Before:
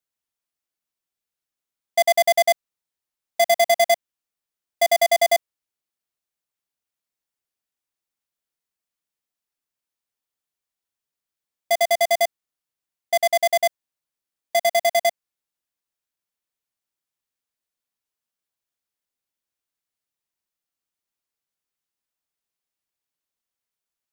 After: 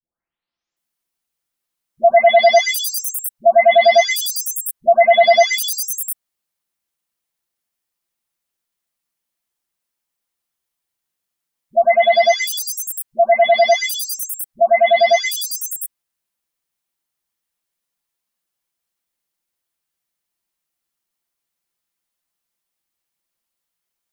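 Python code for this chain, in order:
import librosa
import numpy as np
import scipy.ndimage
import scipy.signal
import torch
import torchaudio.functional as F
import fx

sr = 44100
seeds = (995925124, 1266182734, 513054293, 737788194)

y = fx.spec_delay(x, sr, highs='late', ms=764)
y = y * librosa.db_to_amplitude(8.0)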